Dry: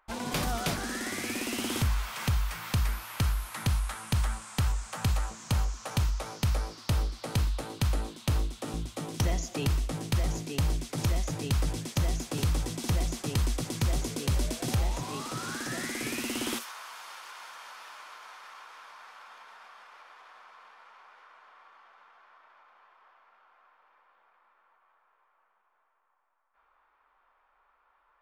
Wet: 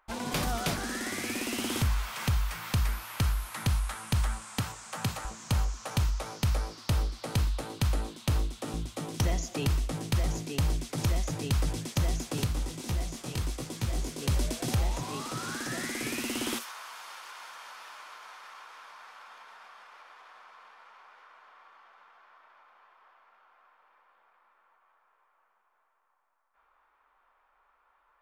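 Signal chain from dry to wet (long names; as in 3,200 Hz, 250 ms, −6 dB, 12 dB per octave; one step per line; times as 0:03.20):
0:04.59–0:05.25: high-pass filter 110 Hz 24 dB per octave
0:12.44–0:14.21: micro pitch shift up and down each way 56 cents → 43 cents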